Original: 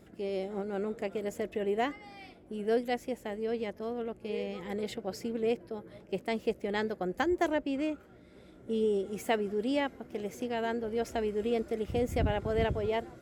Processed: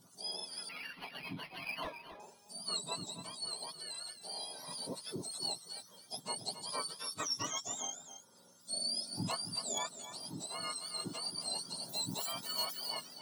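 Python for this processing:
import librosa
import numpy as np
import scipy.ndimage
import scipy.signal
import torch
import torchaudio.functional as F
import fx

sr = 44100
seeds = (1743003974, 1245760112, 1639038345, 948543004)

p1 = fx.octave_mirror(x, sr, pivot_hz=1400.0)
p2 = 10.0 ** (-23.5 / 20.0) * (np.abs((p1 / 10.0 ** (-23.5 / 20.0) + 3.0) % 4.0 - 2.0) - 1.0)
p3 = fx.peak_eq(p2, sr, hz=2600.0, db=-11.0, octaves=0.65)
p4 = p3 + fx.echo_single(p3, sr, ms=270, db=-11.5, dry=0)
p5 = fx.resample_linear(p4, sr, factor=6, at=(0.69, 2.2))
y = p5 * 10.0 ** (-1.5 / 20.0)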